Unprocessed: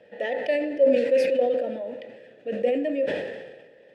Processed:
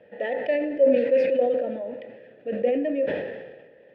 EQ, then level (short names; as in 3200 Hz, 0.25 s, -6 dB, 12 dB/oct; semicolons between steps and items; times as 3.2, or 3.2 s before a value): LPF 2600 Hz 12 dB/oct; low shelf 190 Hz +3.5 dB; 0.0 dB